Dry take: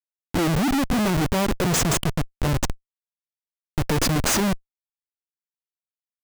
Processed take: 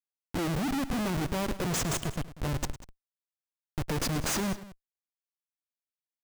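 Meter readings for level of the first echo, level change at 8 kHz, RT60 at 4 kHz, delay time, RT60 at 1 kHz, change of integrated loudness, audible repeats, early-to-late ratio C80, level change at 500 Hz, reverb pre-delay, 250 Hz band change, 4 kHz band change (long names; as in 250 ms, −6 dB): −15.5 dB, −9.0 dB, no reverb audible, 105 ms, no reverb audible, −9.0 dB, 2, no reverb audible, −9.0 dB, no reverb audible, −9.0 dB, −9.0 dB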